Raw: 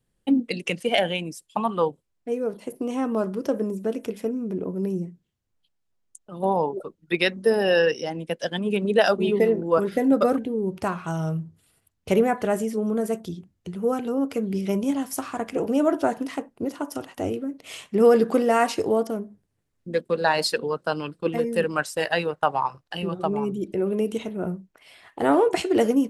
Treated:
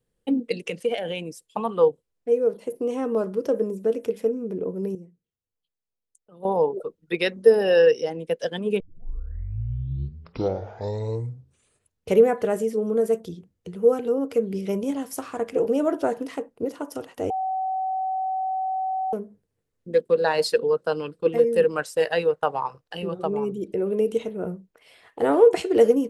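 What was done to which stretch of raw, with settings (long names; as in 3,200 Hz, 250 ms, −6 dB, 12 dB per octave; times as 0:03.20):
0:00.66–0:01.17: downward compressor, threshold −23 dBFS
0:04.95–0:06.45: clip gain −10.5 dB
0:08.80: tape start 3.31 s
0:17.30–0:19.13: beep over 758 Hz −20.5 dBFS
whole clip: parametric band 470 Hz +11 dB 0.34 octaves; level −3.5 dB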